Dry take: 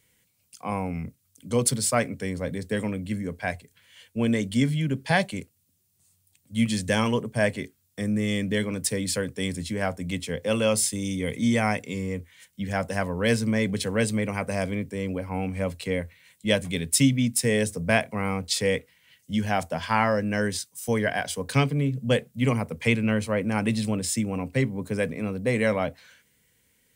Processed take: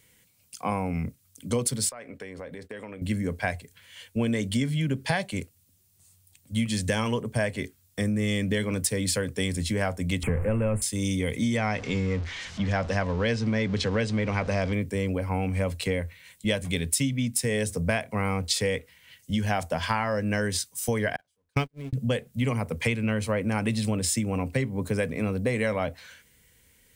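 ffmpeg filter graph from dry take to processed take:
-filter_complex "[0:a]asettb=1/sr,asplit=3[s0][s1][s2];[s0]atrim=end=1.894[s3];[s1]atrim=start=1.89:end=3.02,asetpts=PTS-STARTPTS,afade=t=in:d=0.004:c=qsin,afade=t=out:st=1.126:d=0.004:c=qsin,bass=f=250:g=-13,treble=f=4000:g=-12,acompressor=threshold=0.0112:ratio=16:attack=3.2:release=140:knee=1:detection=peak,agate=range=0.0224:threshold=0.00316:ratio=3:release=100:detection=peak[s4];[s2]atrim=start=3.016[s5];[s3][s4]acrossfade=d=0.004:c1=hsin:c2=qsin[s6];[s6][s5]acrossfade=d=0.004:c1=qsin:c2=hsin,asettb=1/sr,asplit=3[s7][s8][s9];[s7]atrim=end=10.234[s10];[s8]atrim=start=10.23:end=10.82,asetpts=PTS-STARTPTS,afade=t=in:d=0.004:c=qsin,afade=t=out:st=0.586:d=0.004:c=qsin,aeval=exprs='val(0)+0.5*0.0316*sgn(val(0))':c=same,asuperstop=centerf=4600:order=8:qfactor=0.84,aemphasis=mode=reproduction:type=bsi[s11];[s9]atrim=start=10.816[s12];[s10][s11]acrossfade=d=0.004:c1=hsin:c2=qsin[s13];[s13][s12]acrossfade=d=0.004:c1=qsin:c2=hsin,asettb=1/sr,asplit=3[s14][s15][s16];[s14]atrim=end=11.574[s17];[s15]atrim=start=11.57:end=14.73,asetpts=PTS-STARTPTS,afade=t=in:d=0.004:c=qsin,afade=t=out:st=3.156:d=0.004:c=qsin,aeval=exprs='val(0)+0.5*0.0141*sgn(val(0))':c=same,lowpass=f=6000:w=0.5412,lowpass=f=6000:w=1.3066[s18];[s16]atrim=start=14.726[s19];[s17][s18]acrossfade=d=0.004:c1=hsin:c2=qsin[s20];[s20][s19]acrossfade=d=0.004:c1=qsin:c2=hsin,asettb=1/sr,asplit=3[s21][s22][s23];[s21]atrim=end=21.164[s24];[s22]atrim=start=21.16:end=21.93,asetpts=PTS-STARTPTS,afade=t=in:d=0.004:c=qsin,afade=t=out:st=0.766:d=0.004:c=qsin,aeval=exprs='val(0)+0.5*0.0251*sgn(val(0))':c=same,agate=range=0.00251:threshold=0.1:ratio=16:release=100:detection=peak[s25];[s23]atrim=start=21.926[s26];[s24][s25]acrossfade=d=0.004:c1=hsin:c2=qsin[s27];[s27][s26]acrossfade=d=0.004:c1=qsin:c2=hsin,asubboost=boost=2.5:cutoff=88,acompressor=threshold=0.0398:ratio=6,volume=1.78"

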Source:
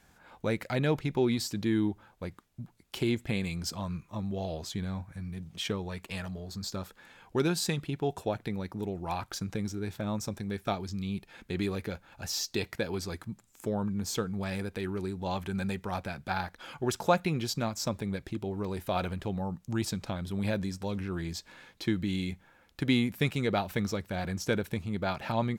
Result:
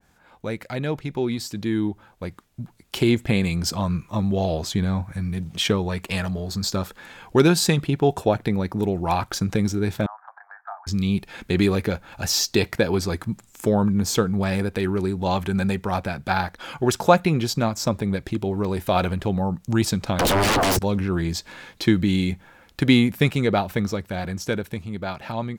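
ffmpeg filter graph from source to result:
-filter_complex "[0:a]asettb=1/sr,asplit=3[s0][s1][s2];[s0]atrim=end=10.064[s3];[s1]atrim=start=10.06:end=10.87,asetpts=PTS-STARTPTS,afade=t=in:d=0.004:c=qsin,afade=t=out:st=0.806:d=0.004:c=qsin,asuperpass=centerf=1100:order=12:qfactor=1.1,acompressor=threshold=0.00224:ratio=2:attack=3.2:release=140:knee=1:detection=peak[s4];[s2]atrim=start=10.866[s5];[s3][s4]acrossfade=d=0.004:c1=hsin:c2=qsin[s6];[s6][s5]acrossfade=d=0.004:c1=qsin:c2=hsin,asettb=1/sr,asplit=3[s7][s8][s9];[s7]atrim=end=20.194[s10];[s8]atrim=start=20.19:end=20.79,asetpts=PTS-STARTPTS,afade=t=in:d=0.004:c=qsin,afade=t=out:st=0.596:d=0.004:c=qsin,equalizer=f=270:t=o:w=0.61:g=-5.5,acompressor=threshold=0.02:ratio=16:attack=3.2:release=140:knee=1:detection=peak,aeval=exprs='0.0473*sin(PI/2*10*val(0)/0.0473)':c=same[s11];[s9]atrim=start=20.786[s12];[s10][s11]acrossfade=d=0.004:c1=hsin:c2=qsin[s13];[s13][s12]acrossfade=d=0.004:c1=qsin:c2=hsin,dynaudnorm=f=470:g=11:m=3.76,adynamicequalizer=threshold=0.0158:dfrequency=1700:dqfactor=0.7:tfrequency=1700:tqfactor=0.7:attack=5:release=100:ratio=0.375:range=2:mode=cutabove:tftype=highshelf,volume=1.12"

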